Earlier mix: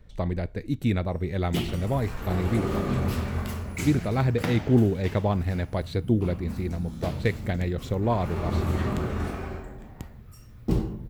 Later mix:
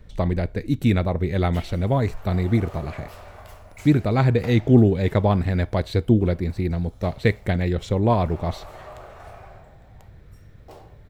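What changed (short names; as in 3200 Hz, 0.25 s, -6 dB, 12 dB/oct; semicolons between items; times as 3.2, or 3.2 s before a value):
speech +5.5 dB; background: add ladder high-pass 560 Hz, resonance 55%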